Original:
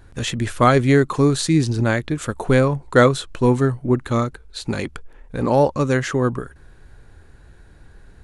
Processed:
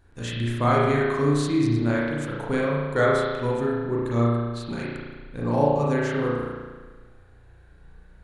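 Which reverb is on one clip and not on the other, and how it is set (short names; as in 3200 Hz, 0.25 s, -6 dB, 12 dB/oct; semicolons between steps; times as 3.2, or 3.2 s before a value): spring tank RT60 1.4 s, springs 34 ms, chirp 30 ms, DRR -5.5 dB; gain -11.5 dB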